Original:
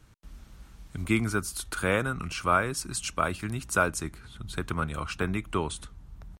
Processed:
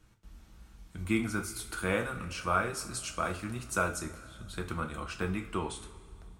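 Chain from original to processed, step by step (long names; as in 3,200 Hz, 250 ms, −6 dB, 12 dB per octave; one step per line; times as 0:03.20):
coupled-rooms reverb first 0.32 s, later 2.3 s, from −18 dB, DRR 2.5 dB
level −6.5 dB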